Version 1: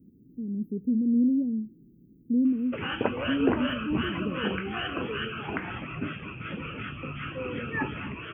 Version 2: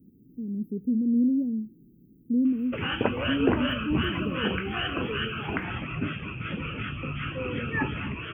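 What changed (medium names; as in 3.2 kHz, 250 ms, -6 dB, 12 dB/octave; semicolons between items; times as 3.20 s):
background: add bass shelf 160 Hz +8 dB; master: add treble shelf 2.8 kHz +7 dB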